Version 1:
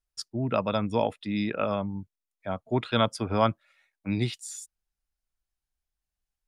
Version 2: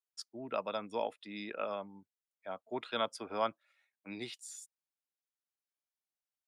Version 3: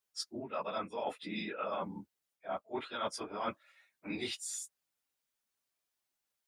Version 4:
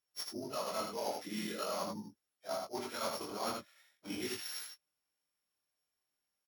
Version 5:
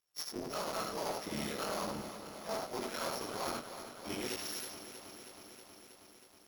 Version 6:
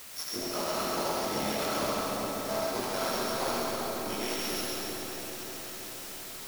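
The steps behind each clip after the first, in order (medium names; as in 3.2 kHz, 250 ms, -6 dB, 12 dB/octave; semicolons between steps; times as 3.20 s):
high-pass 360 Hz 12 dB/octave; trim -8.5 dB
phase randomisation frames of 50 ms; dynamic bell 1.3 kHz, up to +4 dB, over -47 dBFS, Q 1.3; reverse; compression 10:1, threshold -42 dBFS, peak gain reduction 16 dB; reverse; trim +8 dB
sorted samples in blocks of 8 samples; delay 79 ms -4.5 dB; chorus 0.43 Hz, delay 17.5 ms, depth 7 ms; trim +1.5 dB
cycle switcher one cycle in 3, muted; saturation -34 dBFS, distortion -15 dB; bit-crushed delay 319 ms, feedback 80%, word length 11-bit, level -11 dB; trim +4 dB
in parallel at -10.5 dB: word length cut 6-bit, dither triangular; on the sum: two-band feedback delay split 870 Hz, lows 395 ms, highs 135 ms, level -3 dB; algorithmic reverb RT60 2.4 s, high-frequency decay 0.8×, pre-delay 30 ms, DRR 0.5 dB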